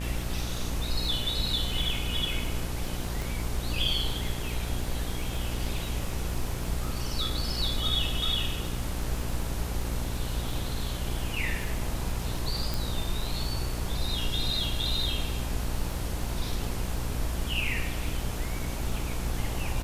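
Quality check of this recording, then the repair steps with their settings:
mains buzz 60 Hz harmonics 28 −34 dBFS
surface crackle 35 per second −35 dBFS
0:03.22: click
0:12.74: click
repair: click removal
hum removal 60 Hz, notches 28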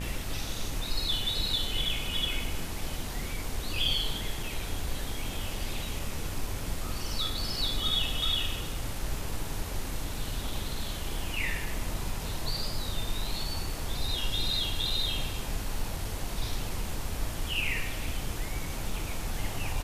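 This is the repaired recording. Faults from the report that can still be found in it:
0:03.22: click

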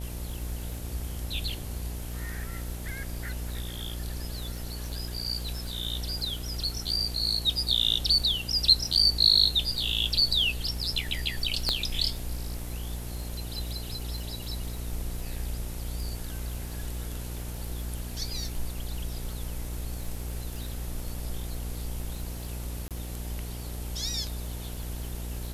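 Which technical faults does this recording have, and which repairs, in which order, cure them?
mains buzz 60 Hz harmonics 15 −36 dBFS
surface crackle 34 per second −37 dBFS
0:11.69: click −12 dBFS
0:22.88–0:22.91: drop-out 27 ms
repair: click removal
hum removal 60 Hz, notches 15
repair the gap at 0:22.88, 27 ms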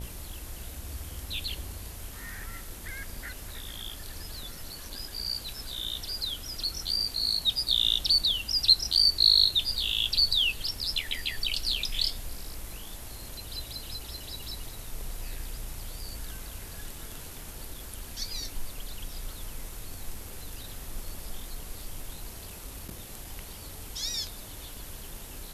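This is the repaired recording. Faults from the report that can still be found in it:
0:11.69: click

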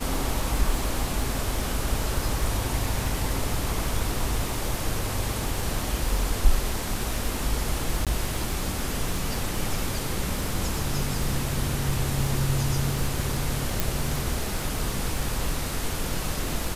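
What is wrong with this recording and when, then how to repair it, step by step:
surface crackle 35 per second −30 dBFS
0:08.05–0:08.07: drop-out 17 ms
0:13.80: click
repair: click removal
repair the gap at 0:08.05, 17 ms

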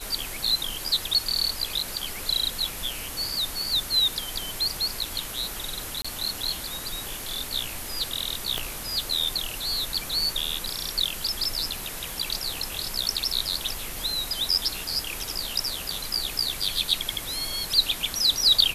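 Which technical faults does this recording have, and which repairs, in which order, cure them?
0:06.02–0:06.04: drop-out 25 ms
0:08.58: click −12 dBFS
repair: click removal
repair the gap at 0:06.02, 25 ms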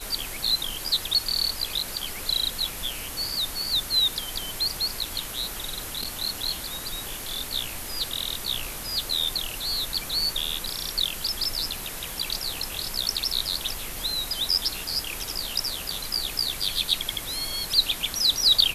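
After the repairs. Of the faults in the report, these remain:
0:08.58: click

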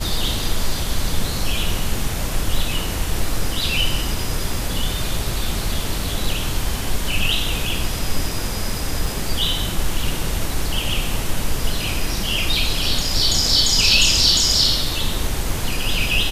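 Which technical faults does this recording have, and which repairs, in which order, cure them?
0:09.06: drop-out 3.3 ms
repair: repair the gap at 0:09.06, 3.3 ms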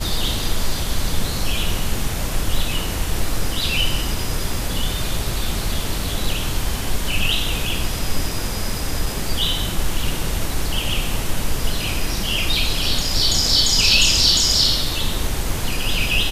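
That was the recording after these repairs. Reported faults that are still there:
none of them is left

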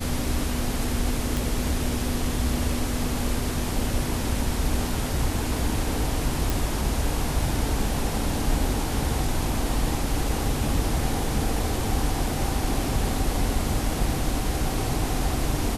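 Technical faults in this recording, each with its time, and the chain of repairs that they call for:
0:01.37: click
0:06.50: click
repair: click removal

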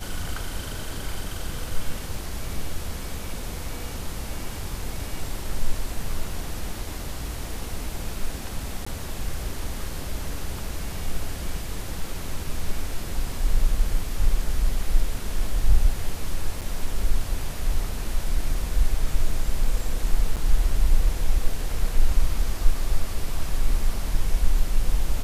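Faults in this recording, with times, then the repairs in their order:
0:08.85–0:08.87: drop-out 15 ms
0:16.61–0:16.62: drop-out 6.8 ms
0:20.36–0:20.37: drop-out 7.6 ms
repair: repair the gap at 0:08.85, 15 ms
repair the gap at 0:16.61, 6.8 ms
repair the gap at 0:20.36, 7.6 ms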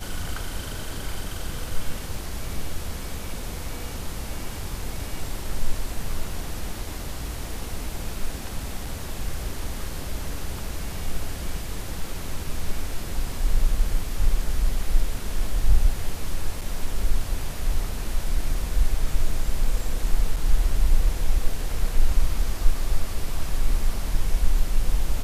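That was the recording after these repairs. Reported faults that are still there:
none of them is left

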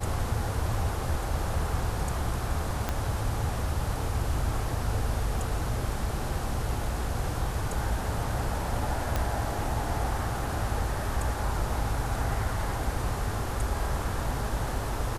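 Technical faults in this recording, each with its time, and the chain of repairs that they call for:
0:02.89: click −14 dBFS
0:09.16: click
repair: click removal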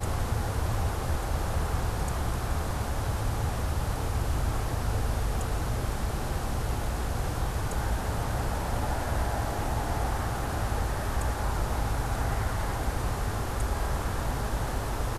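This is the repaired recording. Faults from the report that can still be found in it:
0:02.89: click

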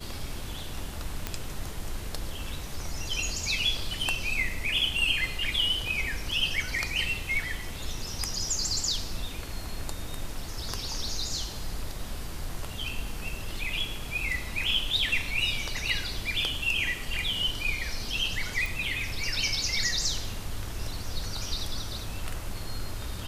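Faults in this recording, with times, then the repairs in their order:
0:01.27: click −14 dBFS
0:18.66: click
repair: click removal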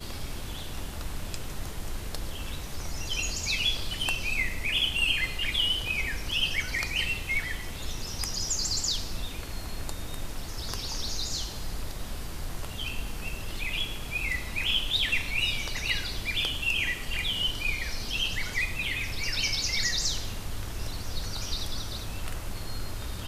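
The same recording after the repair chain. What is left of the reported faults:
none of them is left

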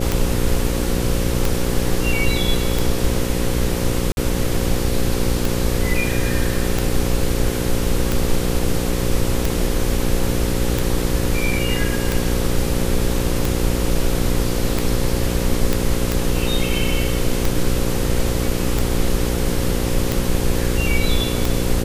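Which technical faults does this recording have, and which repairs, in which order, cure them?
mains buzz 60 Hz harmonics 9 −23 dBFS
scratch tick 45 rpm
0:04.12–0:04.17: drop-out 51 ms
0:15.73: click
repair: click removal
hum removal 60 Hz, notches 9
repair the gap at 0:04.12, 51 ms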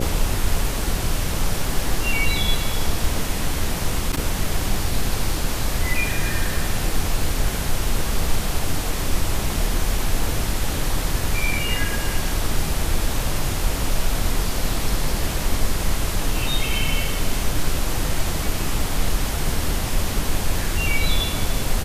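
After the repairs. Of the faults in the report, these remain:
none of them is left

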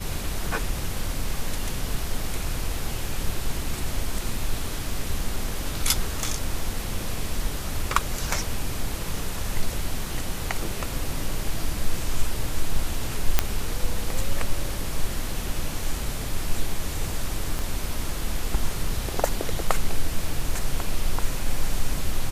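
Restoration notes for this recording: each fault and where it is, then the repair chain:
0:13.39: click −2 dBFS
0:17.59: click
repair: click removal

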